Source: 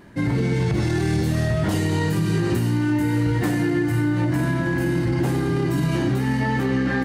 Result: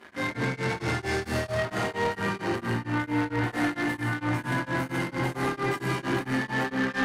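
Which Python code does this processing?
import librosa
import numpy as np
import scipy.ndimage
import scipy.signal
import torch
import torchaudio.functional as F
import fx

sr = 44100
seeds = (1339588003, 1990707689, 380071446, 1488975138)

p1 = fx.high_shelf(x, sr, hz=5300.0, db=-10.5, at=(1.55, 3.52))
p2 = fx.rev_fdn(p1, sr, rt60_s=1.8, lf_ratio=1.05, hf_ratio=0.5, size_ms=76.0, drr_db=-9.5)
p3 = fx.fuzz(p2, sr, gain_db=34.0, gate_db=-38.0)
p4 = p2 + (p3 * 10.0 ** (-11.5 / 20.0))
p5 = fx.highpass(p4, sr, hz=1300.0, slope=6)
p6 = fx.peak_eq(p5, sr, hz=6800.0, db=-7.0, octaves=2.3)
p7 = 10.0 ** (-19.5 / 20.0) * np.tanh(p6 / 10.0 ** (-19.5 / 20.0))
p8 = scipy.signal.sosfilt(scipy.signal.butter(2, 11000.0, 'lowpass', fs=sr, output='sos'), p7)
y = p8 * np.abs(np.cos(np.pi * 4.4 * np.arange(len(p8)) / sr))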